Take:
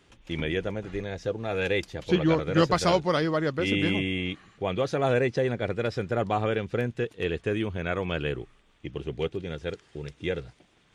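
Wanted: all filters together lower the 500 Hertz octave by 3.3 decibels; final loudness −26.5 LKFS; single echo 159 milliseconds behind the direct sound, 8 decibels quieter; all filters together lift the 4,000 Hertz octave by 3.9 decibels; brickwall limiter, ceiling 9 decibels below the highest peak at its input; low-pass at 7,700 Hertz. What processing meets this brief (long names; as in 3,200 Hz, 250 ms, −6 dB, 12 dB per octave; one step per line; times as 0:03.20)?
low-pass filter 7,700 Hz
parametric band 500 Hz −4 dB
parametric band 4,000 Hz +5.5 dB
brickwall limiter −18 dBFS
single-tap delay 159 ms −8 dB
level +3.5 dB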